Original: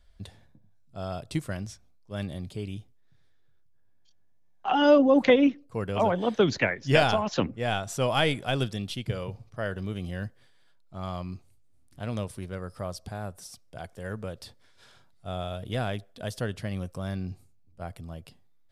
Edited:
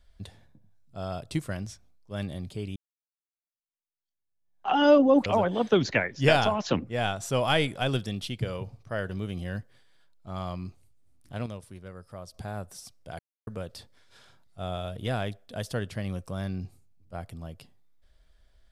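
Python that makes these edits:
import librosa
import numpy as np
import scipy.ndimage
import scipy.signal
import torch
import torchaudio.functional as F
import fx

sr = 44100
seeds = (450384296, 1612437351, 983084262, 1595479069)

y = fx.edit(x, sr, fx.fade_in_span(start_s=2.76, length_s=1.93, curve='exp'),
    fx.cut(start_s=5.26, length_s=0.67),
    fx.clip_gain(start_s=12.13, length_s=0.88, db=-7.5),
    fx.silence(start_s=13.86, length_s=0.28), tone=tone)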